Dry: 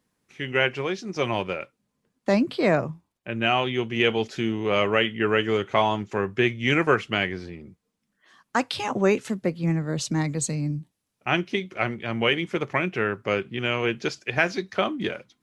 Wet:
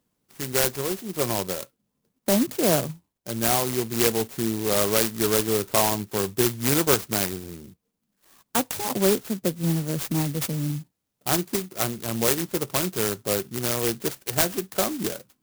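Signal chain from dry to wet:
converter with an unsteady clock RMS 0.15 ms

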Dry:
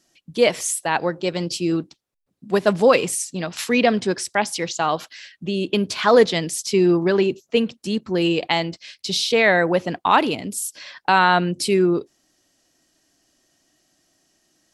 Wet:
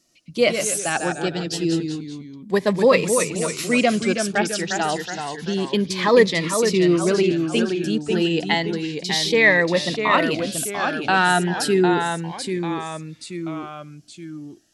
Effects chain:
dynamic equaliser 1,900 Hz, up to +7 dB, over −40 dBFS, Q 4.8
delay with pitch and tempo change per echo 95 ms, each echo −1 semitone, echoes 3, each echo −6 dB
phaser whose notches keep moving one way rising 0.3 Hz

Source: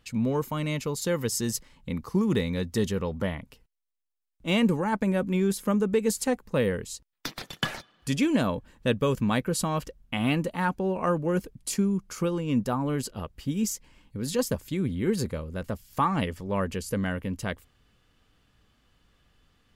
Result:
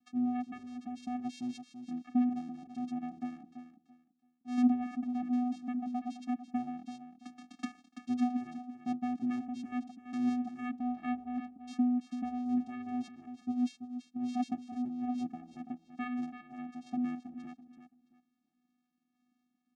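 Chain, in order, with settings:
sample-and-hold tremolo
channel vocoder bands 4, square 247 Hz
on a send: repeating echo 334 ms, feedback 23%, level −10 dB
on the sum: level −4 dB

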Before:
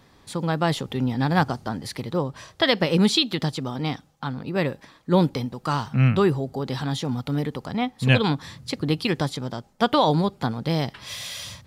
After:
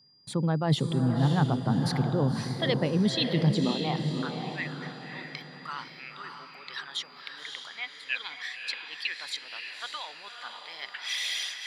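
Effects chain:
spectral envelope exaggerated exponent 1.5
noise gate with hold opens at −42 dBFS
reversed playback
downward compressor, threshold −26 dBFS, peak gain reduction 13 dB
reversed playback
steady tone 4,800 Hz −59 dBFS
high-pass filter sweep 140 Hz → 1,900 Hz, 0:03.54–0:04.15
on a send: feedback delay with all-pass diffusion 570 ms, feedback 42%, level −5 dB

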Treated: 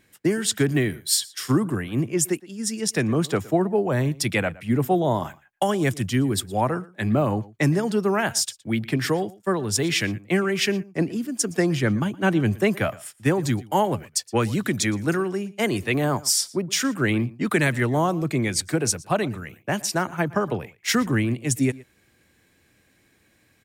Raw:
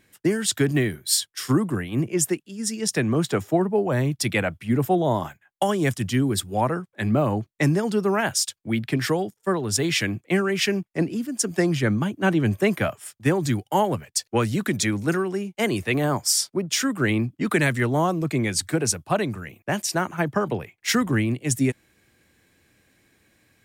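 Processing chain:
slap from a distant wall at 20 metres, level −21 dB

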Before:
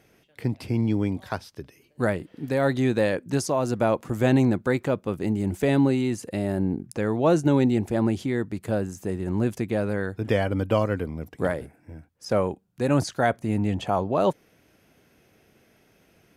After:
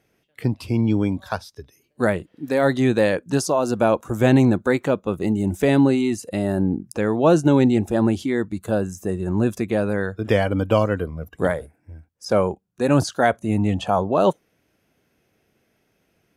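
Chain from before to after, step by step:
noise reduction from a noise print of the clip's start 11 dB
level +4.5 dB

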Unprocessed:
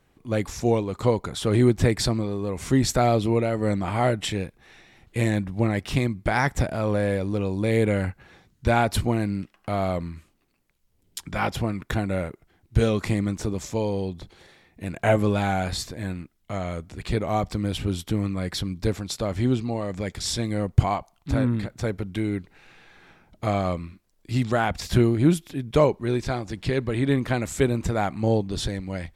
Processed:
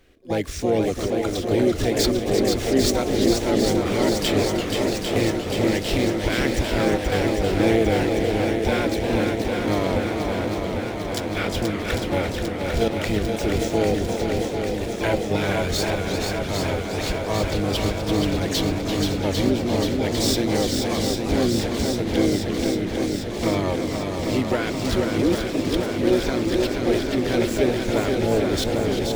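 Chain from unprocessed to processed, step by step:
running median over 5 samples
in parallel at −2 dB: downward compressor 4 to 1, threshold −37 dBFS, peak gain reduction 22.5 dB
on the sum: brickwall limiter −15 dBFS, peak gain reduction 11 dB
gate pattern "x.xxxxx.x.xxx" 99 BPM −12 dB
phaser with its sweep stopped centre 360 Hz, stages 4
pitch-shifted copies added +7 semitones −7 dB
feedback echo with a long and a short gap by turns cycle 799 ms, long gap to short 1.5 to 1, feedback 73%, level −5 dB
feedback echo with a swinging delay time 346 ms, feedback 48%, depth 213 cents, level −9 dB
level +4.5 dB

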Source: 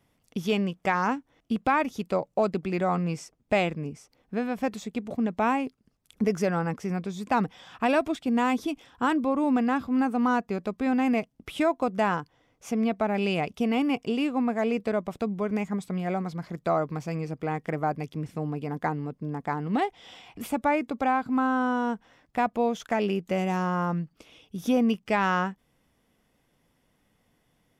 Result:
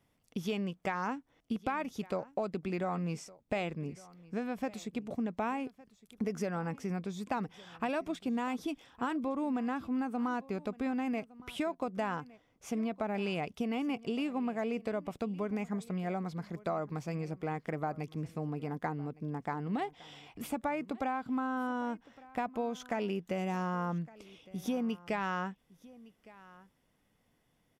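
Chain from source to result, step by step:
downward compressor, threshold −25 dBFS, peak gain reduction 7 dB
on a send: single-tap delay 1,161 ms −21 dB
on the sum: level −5 dB

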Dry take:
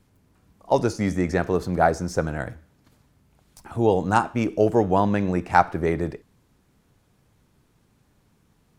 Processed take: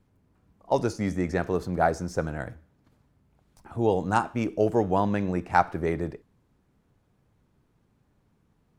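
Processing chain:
one half of a high-frequency compander decoder only
level −4 dB

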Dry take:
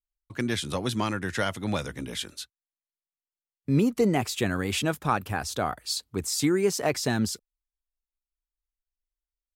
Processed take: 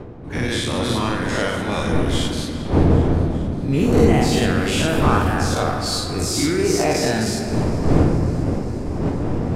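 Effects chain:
every bin's largest magnitude spread in time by 120 ms
wind on the microphone 320 Hz −24 dBFS
low-pass filter 12,000 Hz 12 dB per octave
parametric band 87 Hz +7.5 dB 0.33 octaves
mains-hum notches 50/100 Hz
delay with a high-pass on its return 399 ms, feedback 73%, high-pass 1,600 Hz, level −18 dB
on a send at −2.5 dB: convolution reverb RT60 3.3 s, pre-delay 7 ms
on the sum: level −1 dB

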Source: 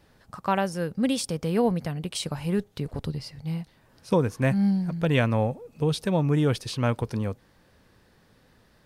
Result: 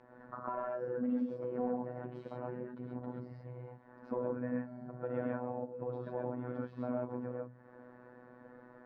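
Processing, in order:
mains-hum notches 50/100/150/200 Hz
reverb whose tail is shaped and stops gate 160 ms rising, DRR −3 dB
downward compressor 3 to 1, threshold −42 dBFS, peak gain reduction 20 dB
notch comb filter 400 Hz
mid-hump overdrive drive 14 dB, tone 1,400 Hz, clips at −24 dBFS
drawn EQ curve 160 Hz 0 dB, 250 Hz +8 dB, 1,700 Hz −1 dB, 3,000 Hz −20 dB
phases set to zero 124 Hz
low-pass filter 4,100 Hz 12 dB per octave
level −2 dB

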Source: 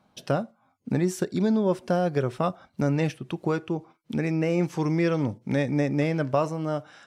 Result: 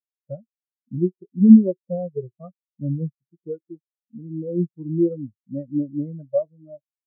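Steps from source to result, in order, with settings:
every bin expanded away from the loudest bin 4 to 1
level +8.5 dB

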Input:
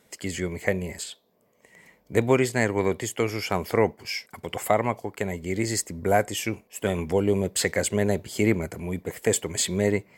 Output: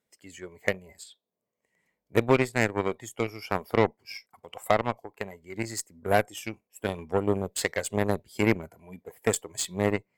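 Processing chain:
noise reduction from a noise print of the clip's start 10 dB
harmonic generator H 3 −31 dB, 6 −42 dB, 7 −21 dB, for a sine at −6 dBFS

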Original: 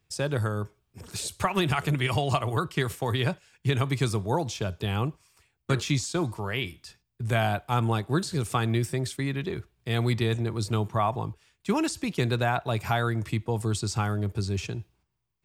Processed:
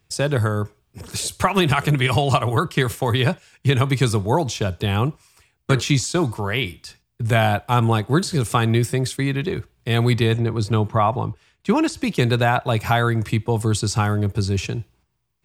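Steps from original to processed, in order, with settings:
0:10.32–0:12.02: high-shelf EQ 5,300 Hz −10 dB
level +7.5 dB

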